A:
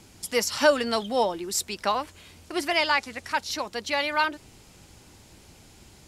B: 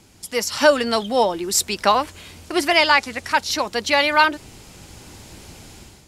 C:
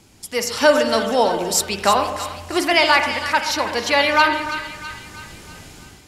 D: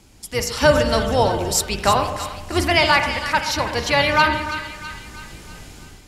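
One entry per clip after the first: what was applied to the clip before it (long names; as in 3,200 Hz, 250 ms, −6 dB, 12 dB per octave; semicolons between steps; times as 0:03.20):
automatic gain control gain up to 10.5 dB
echo with a time of its own for lows and highs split 1,100 Hz, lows 127 ms, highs 326 ms, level −10.5 dB; on a send at −7.5 dB: convolution reverb RT60 0.85 s, pre-delay 35 ms
sub-octave generator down 2 octaves, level +2 dB; level −1 dB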